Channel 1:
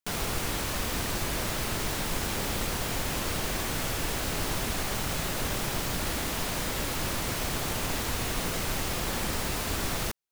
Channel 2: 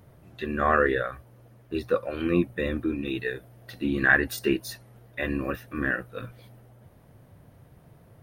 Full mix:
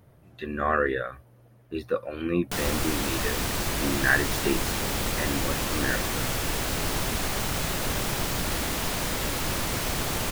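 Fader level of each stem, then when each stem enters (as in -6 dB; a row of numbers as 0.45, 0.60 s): +2.5, -2.5 dB; 2.45, 0.00 s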